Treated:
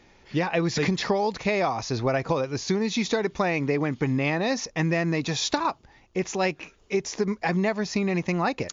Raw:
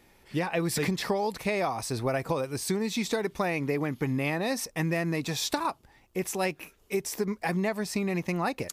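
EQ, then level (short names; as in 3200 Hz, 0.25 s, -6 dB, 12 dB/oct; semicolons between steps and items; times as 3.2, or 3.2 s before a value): brick-wall FIR low-pass 7200 Hz; +4.0 dB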